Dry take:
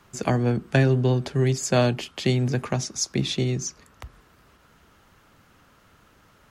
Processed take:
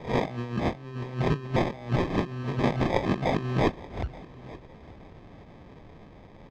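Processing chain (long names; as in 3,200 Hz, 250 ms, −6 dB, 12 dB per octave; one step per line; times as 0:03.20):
peak hold with a rise ahead of every peak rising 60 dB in 0.40 s
compressor whose output falls as the input rises −28 dBFS, ratio −0.5
decimation without filtering 31×
high-frequency loss of the air 200 metres
repeating echo 879 ms, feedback 24%, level −20.5 dB
level +1.5 dB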